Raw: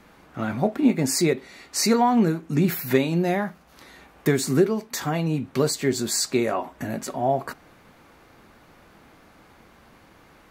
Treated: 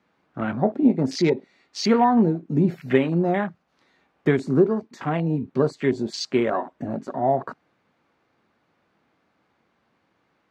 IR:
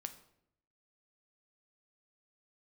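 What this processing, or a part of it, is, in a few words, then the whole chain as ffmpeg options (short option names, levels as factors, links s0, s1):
over-cleaned archive recording: -af "highpass=110,lowpass=5200,afwtdn=0.0251,volume=1.19"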